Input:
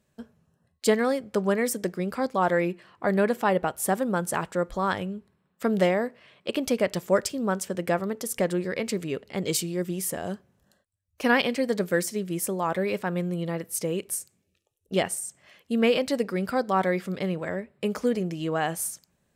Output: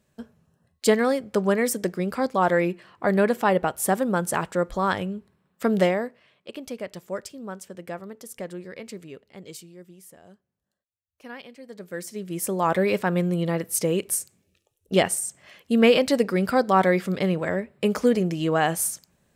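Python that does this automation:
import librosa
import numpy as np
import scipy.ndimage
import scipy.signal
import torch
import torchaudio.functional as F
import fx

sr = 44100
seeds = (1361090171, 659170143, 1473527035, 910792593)

y = fx.gain(x, sr, db=fx.line((5.8, 2.5), (6.49, -9.5), (8.97, -9.5), (9.98, -18.5), (11.6, -18.5), (12.11, -5.5), (12.66, 5.0)))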